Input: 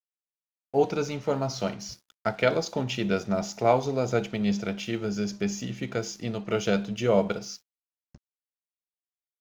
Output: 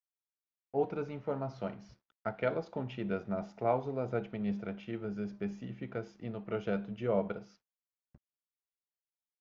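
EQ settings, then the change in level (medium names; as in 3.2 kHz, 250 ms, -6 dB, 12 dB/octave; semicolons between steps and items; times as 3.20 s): low-pass 1.9 kHz 12 dB/octave; -8.5 dB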